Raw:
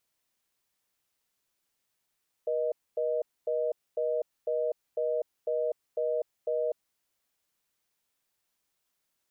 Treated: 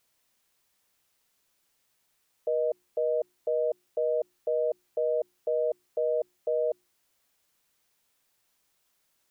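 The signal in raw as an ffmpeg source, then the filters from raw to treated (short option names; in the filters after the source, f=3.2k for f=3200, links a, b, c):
-f lavfi -i "aevalsrc='0.0355*(sin(2*PI*480*t)+sin(2*PI*620*t))*clip(min(mod(t,0.5),0.25-mod(t,0.5))/0.005,0,1)':d=4.41:s=44100"
-filter_complex "[0:a]bandreject=f=60:t=h:w=6,bandreject=f=120:t=h:w=6,bandreject=f=180:t=h:w=6,bandreject=f=240:t=h:w=6,bandreject=f=300:t=h:w=6,bandreject=f=360:t=h:w=6,asplit=2[a][b];[b]alimiter=level_in=10.5dB:limit=-24dB:level=0:latency=1:release=14,volume=-10.5dB,volume=1.5dB[c];[a][c]amix=inputs=2:normalize=0"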